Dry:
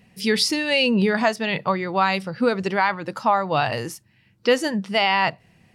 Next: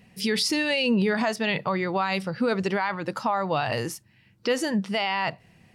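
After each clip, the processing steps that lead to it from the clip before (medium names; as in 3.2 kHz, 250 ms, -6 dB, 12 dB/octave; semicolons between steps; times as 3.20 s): peak limiter -15.5 dBFS, peak gain reduction 8 dB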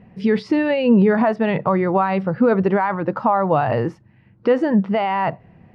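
low-pass 1.2 kHz 12 dB/octave; trim +9 dB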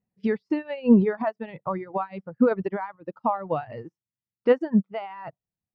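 reverb removal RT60 1.5 s; upward expansion 2.5:1, over -35 dBFS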